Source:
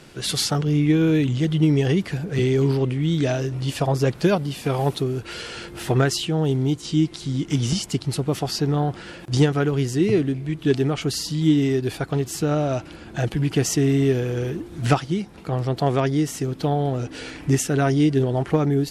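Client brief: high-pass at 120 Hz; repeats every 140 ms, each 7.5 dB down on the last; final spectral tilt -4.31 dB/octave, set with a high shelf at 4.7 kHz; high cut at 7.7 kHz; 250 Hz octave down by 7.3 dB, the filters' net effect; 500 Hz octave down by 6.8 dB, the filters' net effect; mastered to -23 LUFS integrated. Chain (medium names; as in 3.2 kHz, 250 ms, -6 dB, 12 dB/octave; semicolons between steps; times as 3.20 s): high-pass 120 Hz; low-pass 7.7 kHz; peaking EQ 250 Hz -8 dB; peaking EQ 500 Hz -6 dB; treble shelf 4.7 kHz +7 dB; feedback delay 140 ms, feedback 42%, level -7.5 dB; trim +2.5 dB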